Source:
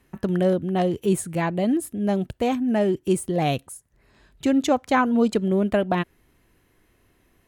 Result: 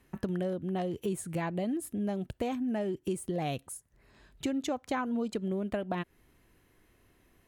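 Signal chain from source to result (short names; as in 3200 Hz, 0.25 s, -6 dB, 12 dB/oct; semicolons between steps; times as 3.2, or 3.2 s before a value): compressor 5:1, threshold -27 dBFS, peak gain reduction 11.5 dB; gain -3 dB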